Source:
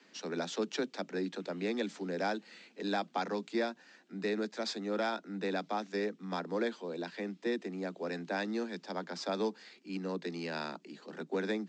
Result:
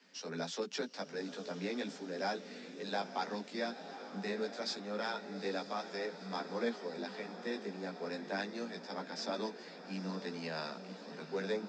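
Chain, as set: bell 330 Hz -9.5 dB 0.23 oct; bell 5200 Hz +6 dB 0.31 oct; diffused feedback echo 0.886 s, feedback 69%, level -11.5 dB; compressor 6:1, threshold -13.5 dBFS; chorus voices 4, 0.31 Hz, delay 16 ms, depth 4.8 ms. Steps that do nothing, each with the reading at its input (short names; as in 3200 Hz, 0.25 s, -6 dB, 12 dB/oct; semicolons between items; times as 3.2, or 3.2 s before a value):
compressor, threshold -13.5 dBFS: input peak -21.0 dBFS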